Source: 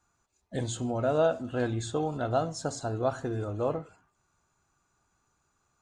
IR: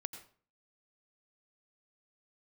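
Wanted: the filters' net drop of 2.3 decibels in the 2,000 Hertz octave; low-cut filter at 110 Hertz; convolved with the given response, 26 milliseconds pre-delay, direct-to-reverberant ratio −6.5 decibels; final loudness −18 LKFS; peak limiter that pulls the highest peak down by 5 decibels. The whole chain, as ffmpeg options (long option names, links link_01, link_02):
-filter_complex "[0:a]highpass=110,equalizer=frequency=2000:width_type=o:gain=-3.5,alimiter=limit=-19.5dB:level=0:latency=1,asplit=2[link_01][link_02];[1:a]atrim=start_sample=2205,adelay=26[link_03];[link_02][link_03]afir=irnorm=-1:irlink=0,volume=8.5dB[link_04];[link_01][link_04]amix=inputs=2:normalize=0,volume=7dB"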